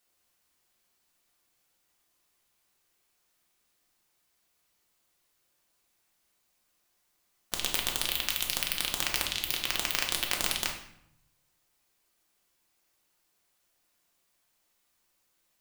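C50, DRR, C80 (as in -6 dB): 7.0 dB, 0.0 dB, 10.0 dB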